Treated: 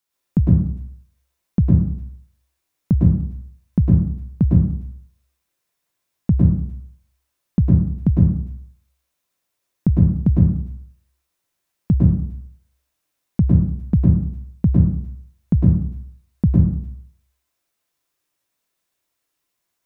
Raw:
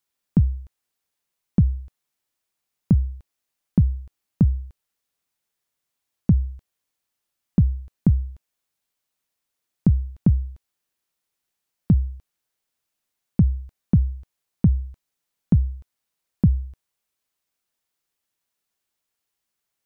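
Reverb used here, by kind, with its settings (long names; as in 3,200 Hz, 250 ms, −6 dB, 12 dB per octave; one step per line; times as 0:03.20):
dense smooth reverb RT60 0.61 s, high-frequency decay 0.55×, pre-delay 95 ms, DRR −4.5 dB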